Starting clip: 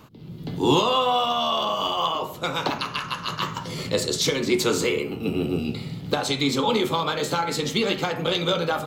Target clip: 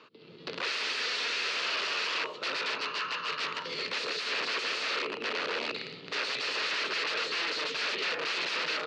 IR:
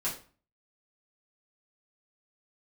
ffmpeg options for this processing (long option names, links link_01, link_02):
-af "aeval=exprs='(mod(15*val(0)+1,2)-1)/15':channel_layout=same,aeval=exprs='0.0668*(cos(1*acos(clip(val(0)/0.0668,-1,1)))-cos(1*PI/2))+0.00473*(cos(7*acos(clip(val(0)/0.0668,-1,1)))-cos(7*PI/2))':channel_layout=same,asoftclip=type=tanh:threshold=-31dB,highpass=410,equalizer=frequency=440:width_type=q:width=4:gain=8,equalizer=frequency=770:width_type=q:width=4:gain=-8,equalizer=frequency=1300:width_type=q:width=4:gain=4,equalizer=frequency=1800:width_type=q:width=4:gain=4,equalizer=frequency=2600:width_type=q:width=4:gain=8,equalizer=frequency=4400:width_type=q:width=4:gain=7,lowpass=frequency=5000:width=0.5412,lowpass=frequency=5000:width=1.3066"